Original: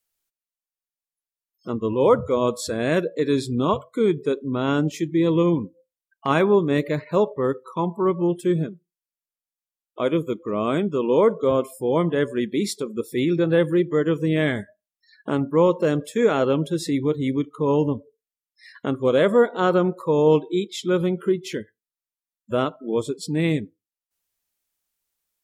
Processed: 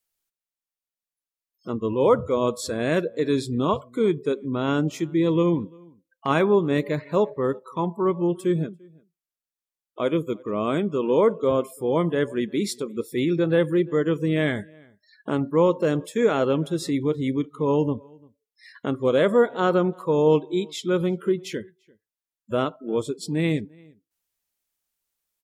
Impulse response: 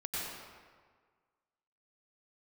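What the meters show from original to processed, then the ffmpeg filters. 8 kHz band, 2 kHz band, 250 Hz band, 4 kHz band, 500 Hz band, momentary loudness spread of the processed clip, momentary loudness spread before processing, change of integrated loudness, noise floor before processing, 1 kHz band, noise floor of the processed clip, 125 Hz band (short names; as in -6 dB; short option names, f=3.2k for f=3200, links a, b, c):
-1.5 dB, -1.5 dB, -1.5 dB, -1.5 dB, -1.5 dB, 9 LU, 9 LU, -1.5 dB, under -85 dBFS, -1.5 dB, under -85 dBFS, -1.5 dB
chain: -filter_complex "[0:a]asplit=2[a][b];[b]adelay=344,volume=-27dB,highshelf=f=4k:g=-7.74[c];[a][c]amix=inputs=2:normalize=0,volume=-1.5dB"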